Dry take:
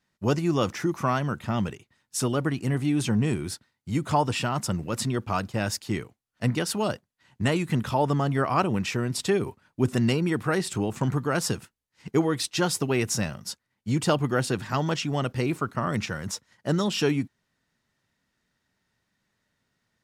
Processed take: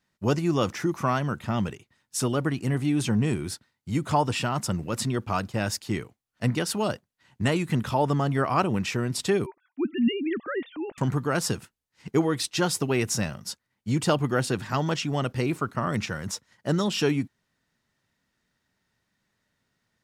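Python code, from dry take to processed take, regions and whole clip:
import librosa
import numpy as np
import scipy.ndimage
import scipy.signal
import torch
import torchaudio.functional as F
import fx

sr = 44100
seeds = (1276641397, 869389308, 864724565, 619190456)

y = fx.chain(x, sr, fx.sine_speech(),
    fx.peak_eq(hz=900.0, db=-7.0, octaves=2.7), at=(9.46, 10.98))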